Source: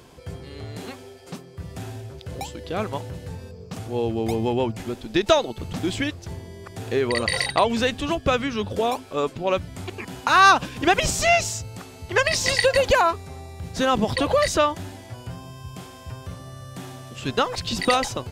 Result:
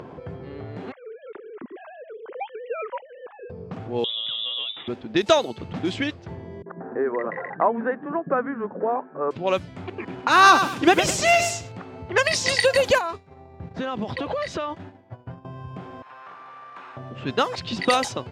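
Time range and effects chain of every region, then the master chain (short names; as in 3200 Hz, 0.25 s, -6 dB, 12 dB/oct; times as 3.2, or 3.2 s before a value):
0.92–3.5 sine-wave speech + bell 710 Hz -9 dB 0.78 oct
4.04–4.88 notch 2100 Hz, Q 8.8 + compressor 10:1, threshold -23 dBFS + inverted band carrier 3700 Hz
6.62–9.31 Chebyshev band-pass 160–1700 Hz, order 4 + bands offset in time lows, highs 40 ms, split 230 Hz
9.9–11.72 bell 330 Hz +6 dB 0.45 oct + lo-fi delay 0.102 s, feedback 35%, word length 6-bit, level -8 dB
12.98–15.45 expander -30 dBFS + compressor 10:1, threshold -23 dBFS
16.02–16.97 minimum comb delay 0.78 ms + HPF 1200 Hz + high shelf 4700 Hz -6.5 dB
whole clip: HPF 120 Hz 12 dB/oct; low-pass opened by the level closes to 1200 Hz, open at -16.5 dBFS; upward compressor, threshold -30 dBFS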